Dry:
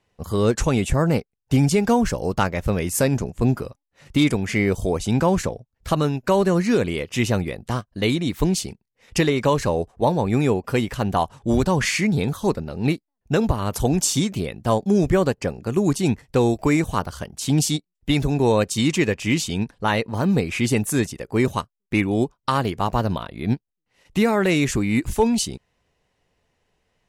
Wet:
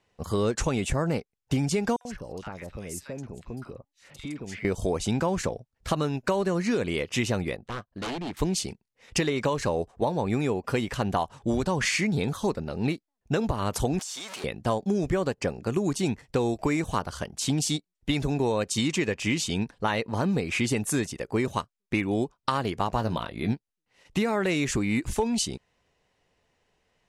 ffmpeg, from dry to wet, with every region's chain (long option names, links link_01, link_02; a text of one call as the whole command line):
ffmpeg -i in.wav -filter_complex "[0:a]asettb=1/sr,asplit=3[link_01][link_02][link_03];[link_01]atrim=end=1.964[link_04];[link_02]atrim=start=1.96:end=4.65,asetpts=PTS-STARTPTS,afade=type=in:duration=0.004:curve=qsin,afade=type=out:start_time=2.686:duration=0.004:curve=qsin,acompressor=threshold=-36dB:ratio=3:attack=3.2:release=140:knee=1:detection=peak,acrossover=split=1100|3500[link_05][link_06][link_07];[link_06]adelay=50[link_08];[link_05]adelay=90[link_09];[link_09][link_08][link_07]amix=inputs=3:normalize=0,atrim=end_sample=118629[link_10];[link_03]atrim=start=4.646[link_11];[link_04][link_10]acrossfade=duration=0.004:curve1=hsin:curve2=qsin[link_12];[link_12][link_11]acrossfade=duration=0.004:curve1=qsin:curve2=hsin,asettb=1/sr,asplit=3[link_13][link_14][link_15];[link_13]atrim=end=7.564[link_16];[link_14]atrim=start=7.56:end=8.37,asetpts=PTS-STARTPTS,afade=type=in:duration=0.004:curve=qsin,afade=type=out:start_time=0.806:duration=0.004:curve=qsin,lowpass=frequency=1100:poles=1,lowshelf=frequency=420:gain=-6,aeval=exprs='0.0501*(abs(mod(val(0)/0.0501+3,4)-2)-1)':channel_layout=same[link_17];[link_15]atrim=start=8.366[link_18];[link_16][link_17]acrossfade=duration=0.004:curve1=hsin:curve2=qsin[link_19];[link_19][link_18]acrossfade=duration=0.004:curve1=qsin:curve2=hsin,asettb=1/sr,asplit=3[link_20][link_21][link_22];[link_20]atrim=end=13.994[link_23];[link_21]atrim=start=13.99:end=14.44,asetpts=PTS-STARTPTS,afade=type=in:duration=0.004:curve=qsin,afade=type=out:start_time=0.446:duration=0.004:curve=qsin,aeval=exprs='val(0)+0.5*0.0562*sgn(val(0))':channel_layout=same,highpass=720,acompressor=threshold=-32dB:ratio=12:attack=3.2:release=140:knee=1:detection=peak[link_24];[link_22]atrim=start=14.436[link_25];[link_23][link_24]acrossfade=duration=0.004:curve1=hsin:curve2=qsin[link_26];[link_26][link_25]acrossfade=duration=0.004:curve1=qsin:curve2=hsin,asettb=1/sr,asplit=3[link_27][link_28][link_29];[link_27]atrim=end=22.944[link_30];[link_28]atrim=start=22.94:end=23.53,asetpts=PTS-STARTPTS,afade=type=in:duration=0.004:curve=qsin,afade=type=out:start_time=0.586:duration=0.004:curve=qsin,highshelf=frequency=10000:gain=5.5,asplit=2[link_31][link_32];[link_32]adelay=18,volume=-10dB[link_33];[link_31][link_33]amix=inputs=2:normalize=0,atrim=end_sample=26019[link_34];[link_29]atrim=start=23.526[link_35];[link_30][link_34]acrossfade=duration=0.004:curve1=hsin:curve2=qsin[link_36];[link_36][link_35]acrossfade=duration=0.004:curve1=qsin:curve2=hsin,lowpass=10000,lowshelf=frequency=210:gain=-4.5,acompressor=threshold=-22dB:ratio=6" out.wav